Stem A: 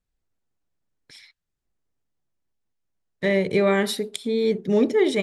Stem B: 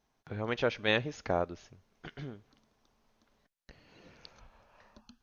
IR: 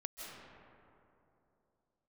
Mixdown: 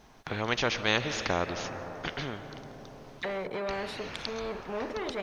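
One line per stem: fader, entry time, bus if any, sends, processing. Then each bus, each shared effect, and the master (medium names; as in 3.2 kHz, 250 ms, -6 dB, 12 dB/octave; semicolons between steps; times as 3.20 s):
-11.5 dB, 0.00 s, no send, waveshaping leveller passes 2; auto-wah 620–3900 Hz, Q 2.2, down, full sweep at -16.5 dBFS
+2.5 dB, 0.00 s, send -12 dB, none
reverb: on, RT60 2.9 s, pre-delay 120 ms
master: treble shelf 6.2 kHz -6.5 dB; spectrum-flattening compressor 2:1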